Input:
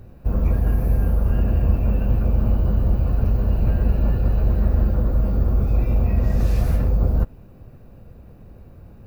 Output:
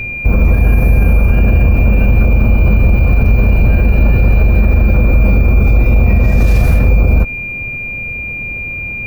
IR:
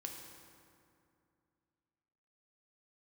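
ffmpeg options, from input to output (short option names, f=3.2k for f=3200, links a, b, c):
-af "aeval=exprs='val(0)+0.02*sin(2*PI*2400*n/s)':c=same,alimiter=level_in=15dB:limit=-1dB:release=50:level=0:latency=1,volume=-1dB"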